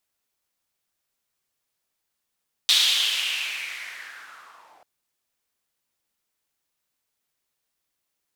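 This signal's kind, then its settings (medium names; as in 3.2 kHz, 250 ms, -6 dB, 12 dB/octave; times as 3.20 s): swept filtered noise white, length 2.14 s bandpass, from 3.7 kHz, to 690 Hz, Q 4.4, linear, gain ramp -31.5 dB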